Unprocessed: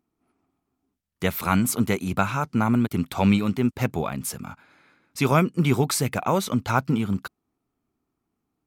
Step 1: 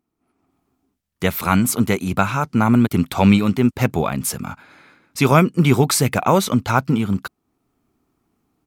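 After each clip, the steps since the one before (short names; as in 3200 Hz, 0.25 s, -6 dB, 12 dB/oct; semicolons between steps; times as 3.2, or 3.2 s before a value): AGC gain up to 10.5 dB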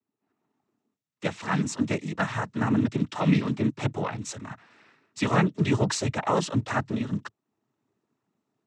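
noise vocoder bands 12; gain -8.5 dB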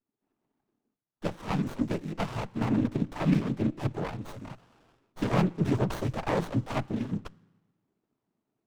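reverb RT60 1.2 s, pre-delay 3 ms, DRR 21 dB; running maximum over 17 samples; gain -2.5 dB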